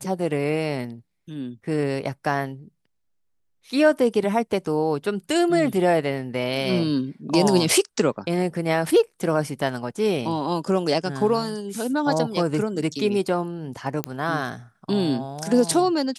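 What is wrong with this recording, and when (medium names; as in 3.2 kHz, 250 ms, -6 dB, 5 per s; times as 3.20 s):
14.04 s: pop -9 dBFS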